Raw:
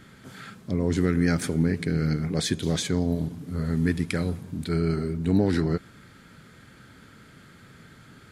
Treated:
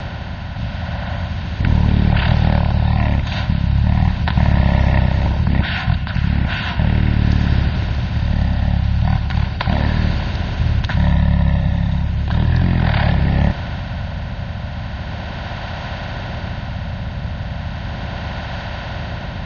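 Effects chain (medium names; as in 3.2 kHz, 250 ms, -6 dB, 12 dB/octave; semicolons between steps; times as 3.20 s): spectral levelling over time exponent 0.4; rotary cabinet horn 0.85 Hz; speed mistake 78 rpm record played at 33 rpm; trim +6.5 dB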